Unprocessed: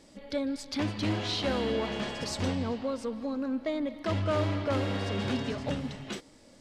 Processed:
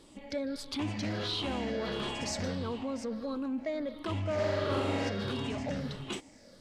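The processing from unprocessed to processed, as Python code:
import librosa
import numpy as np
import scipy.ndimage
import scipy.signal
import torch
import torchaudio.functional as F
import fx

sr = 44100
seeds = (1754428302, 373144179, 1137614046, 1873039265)

p1 = fx.spec_ripple(x, sr, per_octave=0.63, drift_hz=-1.5, depth_db=8)
p2 = fx.over_compress(p1, sr, threshold_db=-34.0, ratio=-1.0)
p3 = p1 + F.gain(torch.from_numpy(p2), -2.0).numpy()
p4 = fx.room_flutter(p3, sr, wall_m=7.4, rt60_s=1.4, at=(4.37, 5.08), fade=0.02)
y = F.gain(torch.from_numpy(p4), -7.5).numpy()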